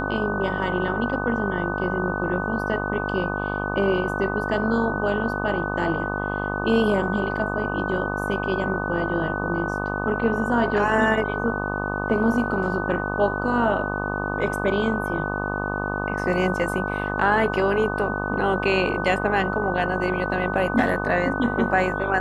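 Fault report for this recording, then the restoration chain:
mains buzz 50 Hz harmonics 25 −28 dBFS
whistle 1,500 Hz −29 dBFS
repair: notch filter 1,500 Hz, Q 30
hum removal 50 Hz, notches 25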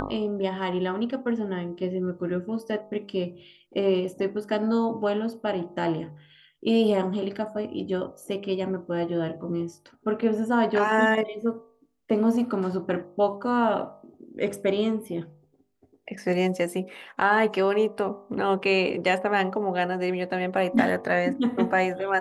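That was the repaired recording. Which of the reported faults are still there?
none of them is left

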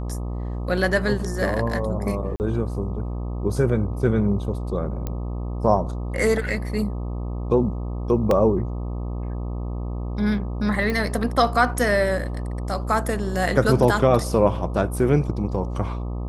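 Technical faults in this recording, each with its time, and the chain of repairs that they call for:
mains buzz 60 Hz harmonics 21 −28 dBFS
0:02.36–0:02.40: drop-out 39 ms
0:05.07: click −15 dBFS
0:08.31: drop-out 2.2 ms
0:10.90: click −14 dBFS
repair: click removal
hum removal 60 Hz, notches 21
repair the gap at 0:02.36, 39 ms
repair the gap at 0:08.31, 2.2 ms

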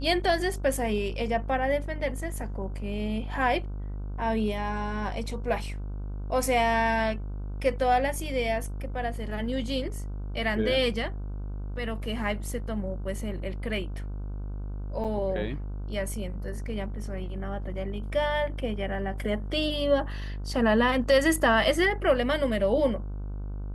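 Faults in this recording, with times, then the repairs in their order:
mains buzz 50 Hz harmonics 31 −34 dBFS
0:15.04–0:15.05: drop-out 7.2 ms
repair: hum removal 50 Hz, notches 31
repair the gap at 0:15.04, 7.2 ms

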